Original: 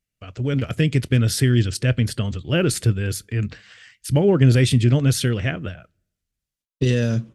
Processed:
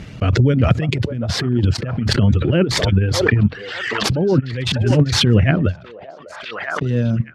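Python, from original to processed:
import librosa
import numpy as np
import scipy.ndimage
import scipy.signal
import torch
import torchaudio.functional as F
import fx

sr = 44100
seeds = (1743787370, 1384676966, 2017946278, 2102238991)

y = scipy.ndimage.median_filter(x, 5, mode='constant')
y = fx.tilt_eq(y, sr, slope=-2.5)
y = fx.over_compress(y, sr, threshold_db=-17.0, ratio=-0.5)
y = fx.dereverb_blind(y, sr, rt60_s=1.7)
y = fx.bandpass_edges(y, sr, low_hz=100.0, high_hz=7800.0)
y = fx.echo_stepped(y, sr, ms=596, hz=710.0, octaves=0.7, feedback_pct=70, wet_db=-12)
y = fx.pre_swell(y, sr, db_per_s=31.0)
y = y * librosa.db_to_amplitude(3.5)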